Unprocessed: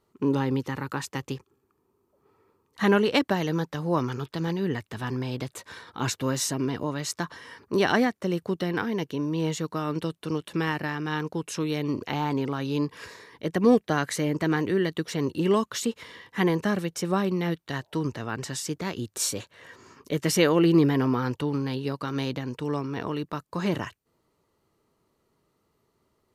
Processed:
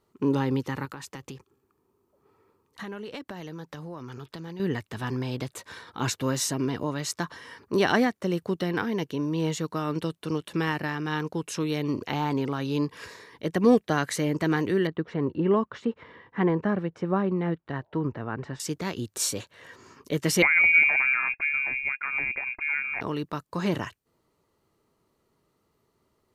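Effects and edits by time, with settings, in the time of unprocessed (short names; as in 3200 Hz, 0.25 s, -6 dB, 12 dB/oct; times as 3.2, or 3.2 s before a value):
0.85–4.6 compressor 5:1, threshold -36 dBFS
14.87–18.6 LPF 1600 Hz
20.42–23.01 inverted band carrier 2600 Hz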